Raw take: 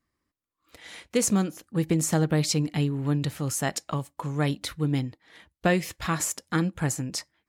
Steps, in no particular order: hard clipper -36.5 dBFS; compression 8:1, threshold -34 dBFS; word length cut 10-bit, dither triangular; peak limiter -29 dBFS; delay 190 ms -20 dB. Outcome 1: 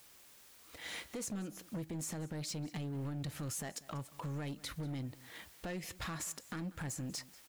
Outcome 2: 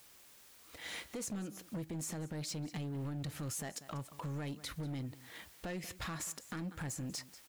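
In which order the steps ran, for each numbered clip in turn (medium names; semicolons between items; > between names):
word length cut > compression > peak limiter > hard clipper > delay; word length cut > compression > delay > peak limiter > hard clipper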